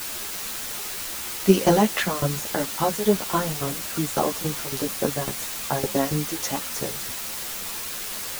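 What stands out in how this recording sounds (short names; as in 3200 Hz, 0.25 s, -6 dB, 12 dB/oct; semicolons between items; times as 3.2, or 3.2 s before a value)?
tremolo saw down 3.6 Hz, depth 90%; a quantiser's noise floor 6-bit, dither triangular; a shimmering, thickened sound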